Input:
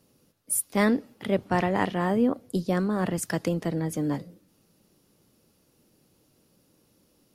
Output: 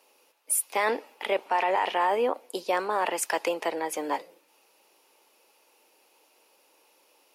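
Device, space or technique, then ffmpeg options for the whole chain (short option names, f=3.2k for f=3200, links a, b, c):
laptop speaker: -af "highpass=f=420:w=0.5412,highpass=f=420:w=1.3066,equalizer=f=900:t=o:w=0.46:g=11,equalizer=f=2.5k:t=o:w=0.57:g=10,alimiter=limit=-18.5dB:level=0:latency=1:release=19,volume=3dB"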